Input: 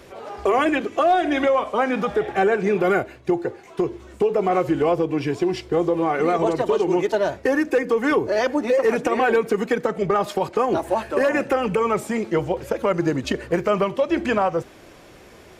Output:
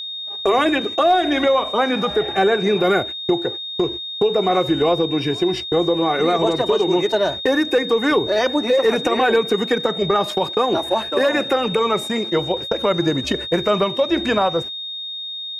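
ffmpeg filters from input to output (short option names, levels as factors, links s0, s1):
-filter_complex "[0:a]asettb=1/sr,asplit=3[s0][s1][s2];[s0]atrim=end=10.444[s3];[s1]atrim=start=10.44:end=12.71,asetpts=PTS-STARTPTS,afade=t=in:d=0.004:c=qsin,afade=t=out:st=2.266:d=0.004:c=qsin,highpass=f=130:p=1[s4];[s2]atrim=start=12.706[s5];[s3][s4]acrossfade=d=0.004:c1=hsin:c2=qsin[s6];[s6][s5]acrossfade=d=0.004:c1=qsin:c2=hsin,agate=range=0.00224:threshold=0.0282:ratio=16:detection=peak,aeval=exprs='val(0)+0.0355*sin(2*PI*3700*n/s)':c=same,volume=1.26"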